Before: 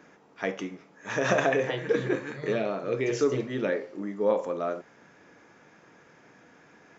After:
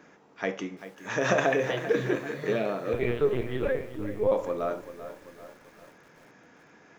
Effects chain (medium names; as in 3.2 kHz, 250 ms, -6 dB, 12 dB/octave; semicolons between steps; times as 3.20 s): 2.93–4.32 s: LPC vocoder at 8 kHz pitch kept; bit-crushed delay 389 ms, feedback 55%, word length 8-bit, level -13 dB